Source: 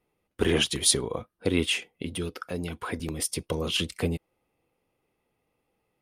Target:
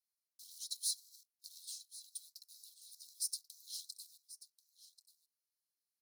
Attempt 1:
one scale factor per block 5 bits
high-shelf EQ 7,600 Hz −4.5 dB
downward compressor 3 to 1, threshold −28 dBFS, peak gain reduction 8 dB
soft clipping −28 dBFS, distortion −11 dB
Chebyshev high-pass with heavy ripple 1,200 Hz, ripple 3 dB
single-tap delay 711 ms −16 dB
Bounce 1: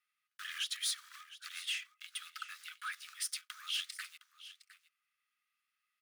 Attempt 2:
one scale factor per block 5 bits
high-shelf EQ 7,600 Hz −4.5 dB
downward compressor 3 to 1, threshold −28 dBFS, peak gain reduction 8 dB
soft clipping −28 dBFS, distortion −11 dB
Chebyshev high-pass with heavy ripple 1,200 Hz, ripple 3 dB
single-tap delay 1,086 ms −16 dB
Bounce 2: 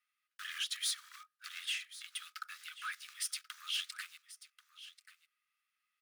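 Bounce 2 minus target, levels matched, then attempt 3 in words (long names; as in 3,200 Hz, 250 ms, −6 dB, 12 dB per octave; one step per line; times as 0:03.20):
4,000 Hz band +4.0 dB
one scale factor per block 5 bits
high-shelf EQ 7,600 Hz −4.5 dB
downward compressor 3 to 1, threshold −28 dBFS, peak gain reduction 8 dB
soft clipping −28 dBFS, distortion −11 dB
Chebyshev high-pass with heavy ripple 4,000 Hz, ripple 3 dB
single-tap delay 1,086 ms −16 dB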